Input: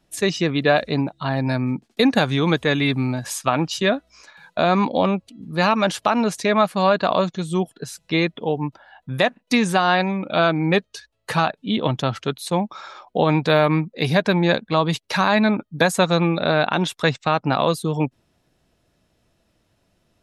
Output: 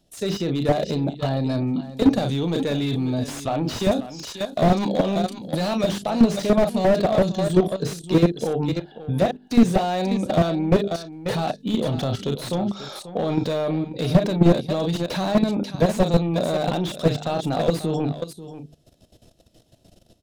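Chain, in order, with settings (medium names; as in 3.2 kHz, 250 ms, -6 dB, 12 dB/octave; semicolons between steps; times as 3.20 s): high-order bell 1.5 kHz -11.5 dB; level rider gain up to 10 dB; doubling 35 ms -11 dB; saturation -7.5 dBFS, distortion -17 dB; hum notches 50/100/150/200/250/300/350/400/450 Hz; level held to a coarse grid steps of 14 dB; 3.73–5.93 s: treble shelf 3 kHz +11 dB; delay 538 ms -14 dB; slew-rate limiter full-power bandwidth 58 Hz; trim +5 dB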